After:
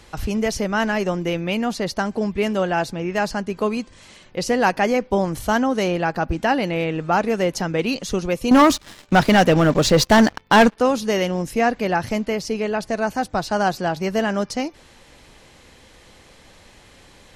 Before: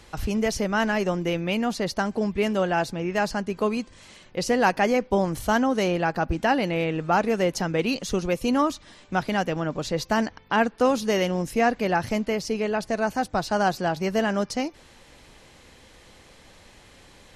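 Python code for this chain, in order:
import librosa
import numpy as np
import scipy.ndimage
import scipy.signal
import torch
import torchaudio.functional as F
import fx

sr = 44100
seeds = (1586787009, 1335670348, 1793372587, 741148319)

y = fx.leveller(x, sr, passes=3, at=(8.51, 10.77))
y = y * librosa.db_to_amplitude(2.5)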